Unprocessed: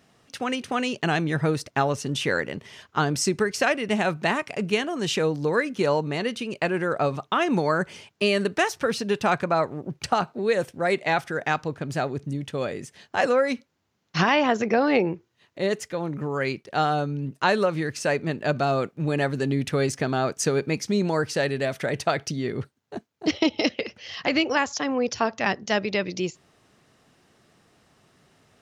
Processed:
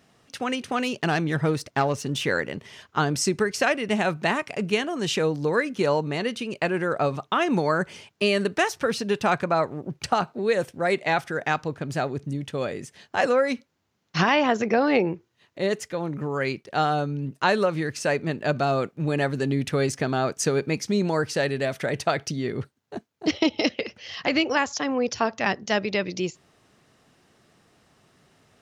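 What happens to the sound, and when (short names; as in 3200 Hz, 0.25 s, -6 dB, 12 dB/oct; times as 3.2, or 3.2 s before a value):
0.76–2.28 self-modulated delay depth 0.057 ms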